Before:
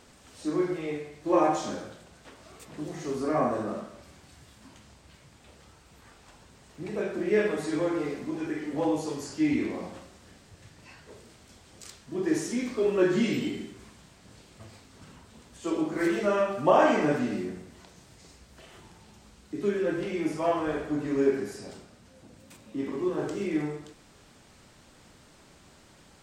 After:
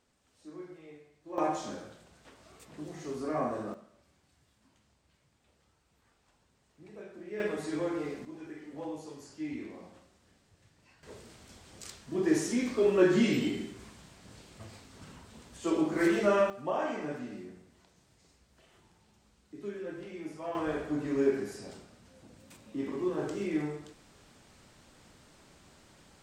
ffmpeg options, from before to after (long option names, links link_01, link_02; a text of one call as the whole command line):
ffmpeg -i in.wav -af "asetnsamples=nb_out_samples=441:pad=0,asendcmd='1.38 volume volume -6dB;3.74 volume volume -16dB;7.4 volume volume -5dB;8.25 volume volume -12.5dB;11.03 volume volume 0dB;16.5 volume volume -12dB;20.55 volume volume -3dB',volume=-18dB" out.wav